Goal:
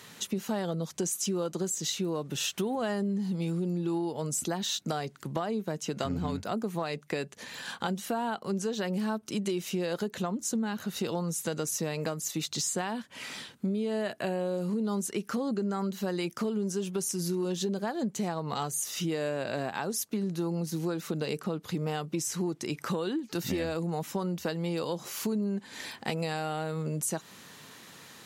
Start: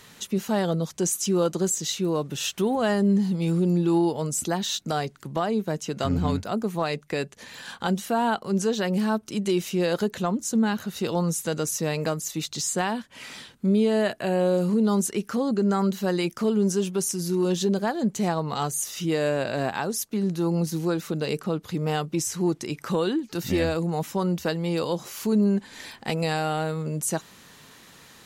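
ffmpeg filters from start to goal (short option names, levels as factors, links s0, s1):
-af "highpass=100,acompressor=threshold=0.0398:ratio=6"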